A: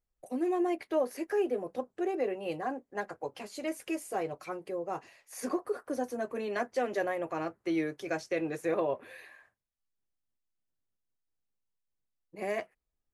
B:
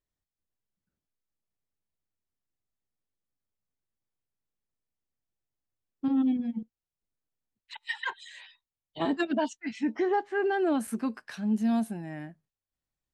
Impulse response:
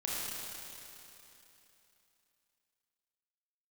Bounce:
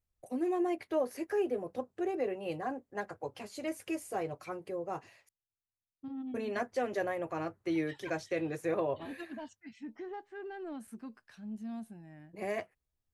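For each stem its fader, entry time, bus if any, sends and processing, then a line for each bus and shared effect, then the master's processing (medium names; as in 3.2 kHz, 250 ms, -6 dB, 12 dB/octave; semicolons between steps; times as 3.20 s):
-2.5 dB, 0.00 s, muted 5.29–6.34 s, no send, none
-15.5 dB, 0.00 s, no send, saturation -19 dBFS, distortion -23 dB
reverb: none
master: peaking EQ 93 Hz +11.5 dB 1.1 oct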